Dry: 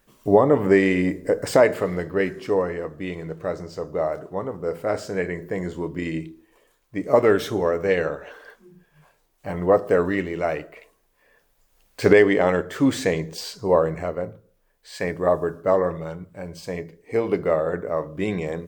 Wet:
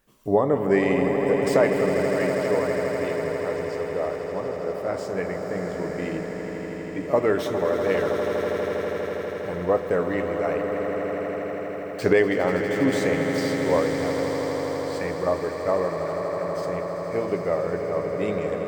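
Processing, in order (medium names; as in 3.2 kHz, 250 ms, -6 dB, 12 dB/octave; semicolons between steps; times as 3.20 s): echo with a slow build-up 81 ms, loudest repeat 8, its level -11 dB; trim -4.5 dB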